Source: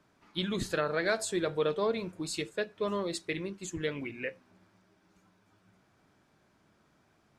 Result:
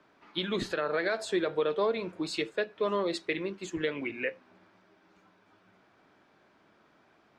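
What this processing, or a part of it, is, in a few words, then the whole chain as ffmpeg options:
DJ mixer with the lows and highs turned down: -filter_complex "[0:a]acrossover=split=240 4600:gain=0.251 1 0.158[link_01][link_02][link_03];[link_01][link_02][link_03]amix=inputs=3:normalize=0,alimiter=level_in=1dB:limit=-24dB:level=0:latency=1:release=222,volume=-1dB,volume=6dB"

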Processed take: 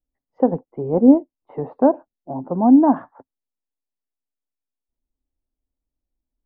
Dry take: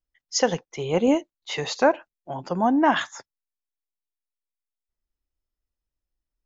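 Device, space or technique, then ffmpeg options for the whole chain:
under water: -af "lowpass=frequency=910:width=0.5412,lowpass=frequency=910:width=1.3066,equalizer=frequency=260:width_type=o:width=0.38:gain=10,volume=2.5dB"

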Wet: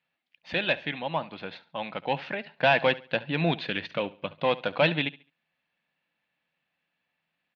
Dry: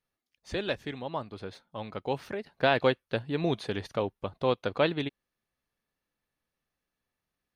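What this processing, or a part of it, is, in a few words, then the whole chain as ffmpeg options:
overdrive pedal into a guitar cabinet: -filter_complex "[0:a]asettb=1/sr,asplit=3[link_01][link_02][link_03];[link_01]atrim=end=3.584[link_04];[link_02]atrim=start=3.58:end=4.42,asetpts=PTS-STARTPTS,afade=type=in:duration=0.004:curve=qsin,afade=type=out:start_time=0.836:duration=0.004:curve=qsin,equalizer=frequency=790:width_type=o:width=0.57:gain=-9.5[link_05];[link_03]atrim=start=4.416[link_06];[link_04][link_05]acrossfade=duration=0.004:curve1=hsin:curve2=qsin[link_07];[link_07][link_06]acrossfade=duration=0.004:curve1=qsin:curve2=hsin,asplit=2[link_08][link_09];[link_09]highpass=frequency=720:poles=1,volume=15dB,asoftclip=type=tanh:threshold=-9.5dB[link_10];[link_08][link_10]amix=inputs=2:normalize=0,lowpass=frequency=6300:poles=1,volume=-6dB,highpass=86,equalizer=frequency=110:width_type=q:width=4:gain=-7,equalizer=frequency=160:width_type=q:width=4:gain=10,equalizer=frequency=410:width_type=q:width=4:gain=-10,equalizer=frequency=1200:width_type=q:width=4:gain=-7,equalizer=frequency=2600:width_type=q:width=4:gain=5,lowpass=frequency=3700:width=0.5412,lowpass=frequency=3700:width=1.3066,aecho=1:1:70|140|210:0.112|0.0337|0.0101"

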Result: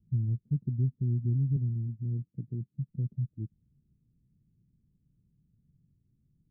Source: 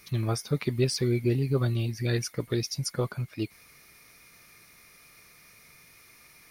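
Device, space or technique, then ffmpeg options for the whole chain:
the neighbour's flat through the wall: -filter_complex "[0:a]asettb=1/sr,asplit=3[link_01][link_02][link_03];[link_01]atrim=end=1.564[link_04];[link_02]atrim=start=1.56:end=2.89,asetpts=PTS-STARTPTS,afade=type=in:duration=0.004:curve=qsin,afade=type=out:start_time=1.326:duration=0.004:curve=qsin,highpass=130[link_05];[link_03]atrim=start=2.886[link_06];[link_04][link_05]acrossfade=duration=0.004:curve1=hsin:curve2=qsin[link_07];[link_07][link_06]acrossfade=duration=0.004:curve1=qsin:curve2=hsin,lowpass=frequency=220:width=0.5412,lowpass=frequency=220:width=1.3066,equalizer=frequency=130:width_type=o:width=0.77:gain=3.5,volume=-2.5dB"

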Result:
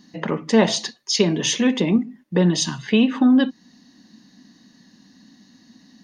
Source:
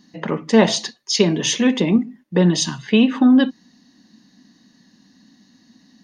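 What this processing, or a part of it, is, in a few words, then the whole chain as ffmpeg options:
parallel compression: -filter_complex "[0:a]asplit=2[link_01][link_02];[link_02]acompressor=threshold=-27dB:ratio=6,volume=-1.5dB[link_03];[link_01][link_03]amix=inputs=2:normalize=0,volume=-3.5dB"

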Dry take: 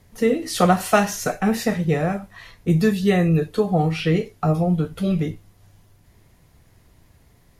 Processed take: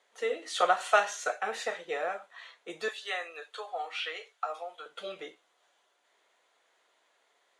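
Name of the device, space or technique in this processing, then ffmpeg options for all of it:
phone speaker on a table: -filter_complex "[0:a]asettb=1/sr,asplit=3[link_01][link_02][link_03];[link_01]atrim=end=2.884[link_04];[link_02]atrim=start=2.88:end=4.86,asetpts=PTS-STARTPTS,afade=type=in:duration=0.004:curve=qsin,afade=type=out:start_time=1.976:duration=0.004:curve=qsin,highpass=810[link_05];[link_03]atrim=start=4.856[link_06];[link_04][link_05]acrossfade=duration=0.004:curve1=hsin:curve2=qsin[link_07];[link_07][link_06]acrossfade=duration=0.004:curve1=qsin:curve2=hsin,highpass=frequency=490:width=0.5412,highpass=frequency=490:width=1.3066,equalizer=frequency=1400:width_type=q:width=4:gain=5,equalizer=frequency=3400:width_type=q:width=4:gain=6,equalizer=frequency=5200:width_type=q:width=4:gain=-8,lowpass=frequency=8100:width=0.5412,lowpass=frequency=8100:width=1.3066,volume=-7dB"

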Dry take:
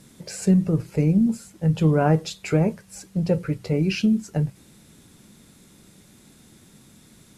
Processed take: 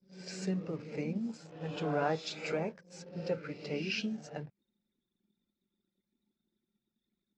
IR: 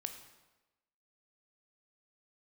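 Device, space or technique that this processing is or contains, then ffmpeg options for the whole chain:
ghost voice: -filter_complex "[0:a]areverse[link_01];[1:a]atrim=start_sample=2205[link_02];[link_01][link_02]afir=irnorm=-1:irlink=0,areverse,highpass=frequency=760:poles=1,lowpass=frequency=5800:width=0.5412,lowpass=frequency=5800:width=1.3066,anlmdn=0.00251,volume=-3.5dB"

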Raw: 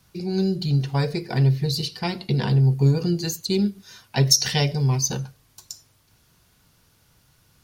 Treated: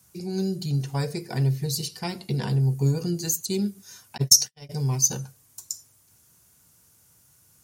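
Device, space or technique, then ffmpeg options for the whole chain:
budget condenser microphone: -filter_complex "[0:a]highpass=frequency=61:width=0.5412,highpass=frequency=61:width=1.3066,highshelf=frequency=5500:width_type=q:width=1.5:gain=10,asplit=3[link_01][link_02][link_03];[link_01]afade=type=out:start_time=4.16:duration=0.02[link_04];[link_02]agate=range=-59dB:threshold=-16dB:ratio=16:detection=peak,afade=type=in:start_time=4.16:duration=0.02,afade=type=out:start_time=4.69:duration=0.02[link_05];[link_03]afade=type=in:start_time=4.69:duration=0.02[link_06];[link_04][link_05][link_06]amix=inputs=3:normalize=0,volume=-4.5dB"

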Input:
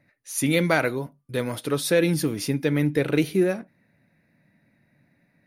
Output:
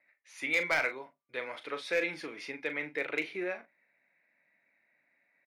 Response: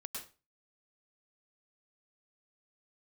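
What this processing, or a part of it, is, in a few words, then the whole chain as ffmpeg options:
megaphone: -filter_complex "[0:a]highpass=630,lowpass=3100,equalizer=frequency=2200:width_type=o:width=0.37:gain=9.5,asoftclip=type=hard:threshold=-15dB,asplit=2[link_01][link_02];[link_02]adelay=39,volume=-10dB[link_03];[link_01][link_03]amix=inputs=2:normalize=0,volume=-6.5dB"

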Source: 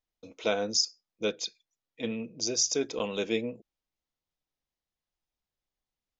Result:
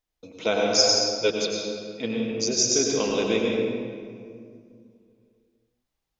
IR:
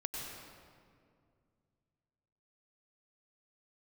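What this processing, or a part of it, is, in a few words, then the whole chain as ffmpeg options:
stairwell: -filter_complex "[1:a]atrim=start_sample=2205[link_01];[0:a][link_01]afir=irnorm=-1:irlink=0,asettb=1/sr,asplit=3[link_02][link_03][link_04];[link_02]atrim=end=0.784[link_05];[link_03]atrim=start=0.78:end=1.3,asetpts=PTS-STARTPTS,afade=type=in:duration=0.004:curve=qsin,afade=type=out:start_time=0.516:duration=0.004:curve=qsin,aecho=1:1:7.4:0.89,atrim=end_sample=22932[link_06];[link_04]atrim=start=1.296[link_07];[link_05][link_06]acrossfade=duration=0.004:curve1=hsin:curve2=qsin[link_08];[link_08][link_07]acrossfade=duration=0.004:curve1=qsin:curve2=hsin,volume=6dB"

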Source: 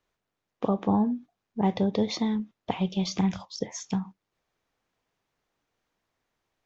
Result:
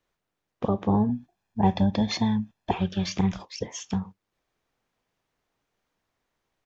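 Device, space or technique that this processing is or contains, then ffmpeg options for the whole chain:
octave pedal: -filter_complex "[0:a]asettb=1/sr,asplit=3[link_01][link_02][link_03];[link_01]atrim=end=1.094[link_04];[link_02]atrim=start=1.09:end=2.78,asetpts=PTS-STARTPTS,afade=type=in:duration=0.004:curve=qsin,afade=type=out:start_time=1.686:duration=0.004:curve=qsin,aecho=1:1:1.2:0.81,atrim=end_sample=74529[link_05];[link_03]atrim=start=2.776[link_06];[link_04][link_05]acrossfade=duration=0.004:curve1=hsin:curve2=qsin[link_07];[link_07][link_06]acrossfade=duration=0.004:curve1=qsin:curve2=hsin,asplit=2[link_08][link_09];[link_09]asetrate=22050,aresample=44100,atempo=2,volume=-7dB[link_10];[link_08][link_10]amix=inputs=2:normalize=0"

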